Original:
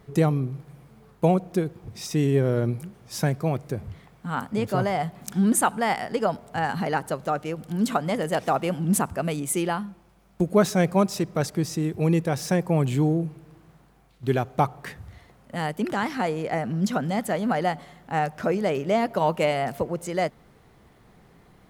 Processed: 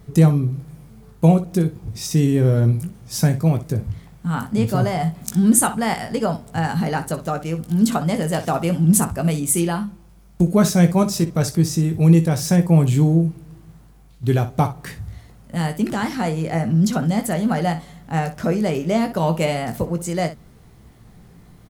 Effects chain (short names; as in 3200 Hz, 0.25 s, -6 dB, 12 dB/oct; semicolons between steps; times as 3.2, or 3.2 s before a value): tone controls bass +10 dB, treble +8 dB; early reflections 18 ms -8 dB, 62 ms -13 dB